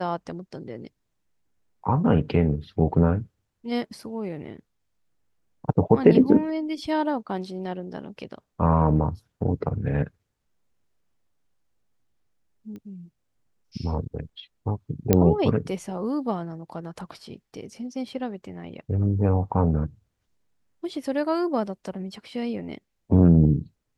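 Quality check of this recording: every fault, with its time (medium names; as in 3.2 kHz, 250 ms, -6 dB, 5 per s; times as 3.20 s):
12.76 s: pop -30 dBFS
15.13 s: pop -4 dBFS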